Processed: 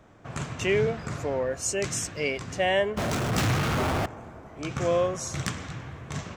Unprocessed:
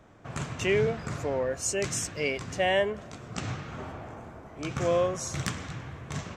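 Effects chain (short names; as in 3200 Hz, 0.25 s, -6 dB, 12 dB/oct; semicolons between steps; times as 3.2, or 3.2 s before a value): 2.97–4.06 power-law curve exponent 0.35; gain +1 dB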